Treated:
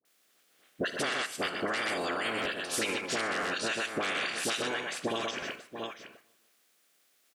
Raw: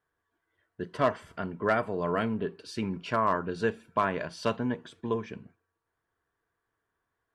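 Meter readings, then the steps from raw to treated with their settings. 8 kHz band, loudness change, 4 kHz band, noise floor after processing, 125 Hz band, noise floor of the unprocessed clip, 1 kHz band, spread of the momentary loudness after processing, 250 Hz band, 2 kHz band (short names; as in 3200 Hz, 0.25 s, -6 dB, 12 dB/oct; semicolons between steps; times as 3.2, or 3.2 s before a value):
+16.0 dB, -1.5 dB, +11.5 dB, -69 dBFS, -11.0 dB, -83 dBFS, -5.0 dB, 8 LU, -5.5 dB, +5.5 dB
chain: spectral limiter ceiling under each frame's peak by 28 dB; tapped delay 61/124/681 ms -13.5/-7/-16.5 dB; in parallel at +2.5 dB: level quantiser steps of 17 dB; on the sum: dynamic EQ 8200 Hz, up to +7 dB, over -47 dBFS, Q 0.76; dispersion highs, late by 52 ms, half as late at 880 Hz; limiter -17 dBFS, peak gain reduction 7.5 dB; HPF 250 Hz 12 dB/oct; compressor, threshold -36 dBFS, peak gain reduction 12.5 dB; bell 940 Hz -12 dB 0.24 oct; crackling interface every 0.99 s, samples 512, repeat, from 0.45; warbling echo 0.15 s, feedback 47%, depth 55 cents, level -23.5 dB; gain +7 dB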